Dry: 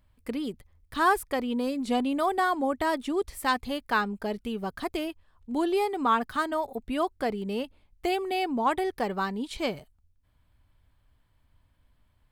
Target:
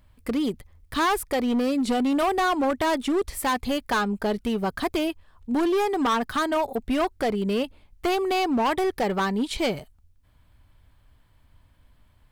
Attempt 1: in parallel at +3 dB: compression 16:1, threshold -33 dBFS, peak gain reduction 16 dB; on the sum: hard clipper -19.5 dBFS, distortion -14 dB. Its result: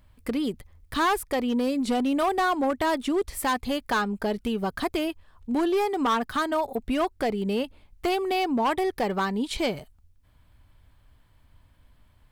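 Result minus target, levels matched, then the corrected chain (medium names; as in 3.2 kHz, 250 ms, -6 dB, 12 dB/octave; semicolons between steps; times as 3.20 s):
compression: peak gain reduction +7 dB
in parallel at +3 dB: compression 16:1, threshold -25.5 dBFS, peak gain reduction 9 dB; on the sum: hard clipper -19.5 dBFS, distortion -11 dB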